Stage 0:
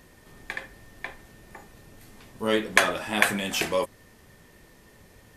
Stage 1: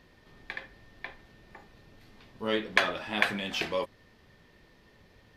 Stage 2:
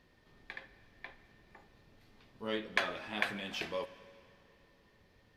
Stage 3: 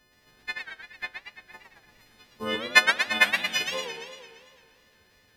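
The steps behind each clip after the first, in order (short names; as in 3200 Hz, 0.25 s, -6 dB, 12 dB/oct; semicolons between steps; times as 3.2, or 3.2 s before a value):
resonant high shelf 6000 Hz -11.5 dB, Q 1.5; gain -5.5 dB
plate-style reverb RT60 2.8 s, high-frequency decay 0.85×, DRR 14.5 dB; gain -7.5 dB
frequency quantiser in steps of 3 st; transient shaper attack +11 dB, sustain -5 dB; warbling echo 0.114 s, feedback 64%, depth 219 cents, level -6 dB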